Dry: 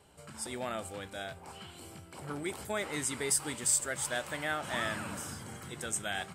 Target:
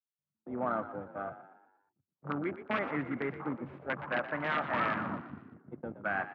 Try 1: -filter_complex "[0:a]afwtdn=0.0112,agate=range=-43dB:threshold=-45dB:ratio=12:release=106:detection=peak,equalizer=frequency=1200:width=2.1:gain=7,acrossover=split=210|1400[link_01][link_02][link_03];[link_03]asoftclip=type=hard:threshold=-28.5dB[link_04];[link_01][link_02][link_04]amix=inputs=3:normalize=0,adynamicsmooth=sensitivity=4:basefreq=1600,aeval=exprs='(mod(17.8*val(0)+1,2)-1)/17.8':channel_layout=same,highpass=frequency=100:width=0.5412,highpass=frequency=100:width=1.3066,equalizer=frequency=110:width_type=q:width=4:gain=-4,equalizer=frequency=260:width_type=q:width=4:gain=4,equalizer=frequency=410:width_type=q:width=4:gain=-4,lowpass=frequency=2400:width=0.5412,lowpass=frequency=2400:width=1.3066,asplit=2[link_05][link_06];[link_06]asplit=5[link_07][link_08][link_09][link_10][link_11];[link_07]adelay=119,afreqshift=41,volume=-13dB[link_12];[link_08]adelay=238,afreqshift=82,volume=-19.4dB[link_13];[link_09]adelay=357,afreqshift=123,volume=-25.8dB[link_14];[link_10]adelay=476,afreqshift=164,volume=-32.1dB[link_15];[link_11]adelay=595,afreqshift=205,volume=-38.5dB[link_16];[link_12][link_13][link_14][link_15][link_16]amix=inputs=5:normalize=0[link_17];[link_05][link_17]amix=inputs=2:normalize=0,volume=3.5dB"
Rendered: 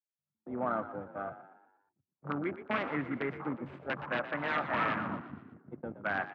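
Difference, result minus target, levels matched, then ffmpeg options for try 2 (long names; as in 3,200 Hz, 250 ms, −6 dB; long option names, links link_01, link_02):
hard clipping: distortion −5 dB
-filter_complex "[0:a]afwtdn=0.0112,agate=range=-43dB:threshold=-45dB:ratio=12:release=106:detection=peak,equalizer=frequency=1200:width=2.1:gain=7,acrossover=split=210|1400[link_01][link_02][link_03];[link_03]asoftclip=type=hard:threshold=-35.5dB[link_04];[link_01][link_02][link_04]amix=inputs=3:normalize=0,adynamicsmooth=sensitivity=4:basefreq=1600,aeval=exprs='(mod(17.8*val(0)+1,2)-1)/17.8':channel_layout=same,highpass=frequency=100:width=0.5412,highpass=frequency=100:width=1.3066,equalizer=frequency=110:width_type=q:width=4:gain=-4,equalizer=frequency=260:width_type=q:width=4:gain=4,equalizer=frequency=410:width_type=q:width=4:gain=-4,lowpass=frequency=2400:width=0.5412,lowpass=frequency=2400:width=1.3066,asplit=2[link_05][link_06];[link_06]asplit=5[link_07][link_08][link_09][link_10][link_11];[link_07]adelay=119,afreqshift=41,volume=-13dB[link_12];[link_08]adelay=238,afreqshift=82,volume=-19.4dB[link_13];[link_09]adelay=357,afreqshift=123,volume=-25.8dB[link_14];[link_10]adelay=476,afreqshift=164,volume=-32.1dB[link_15];[link_11]adelay=595,afreqshift=205,volume=-38.5dB[link_16];[link_12][link_13][link_14][link_15][link_16]amix=inputs=5:normalize=0[link_17];[link_05][link_17]amix=inputs=2:normalize=0,volume=3.5dB"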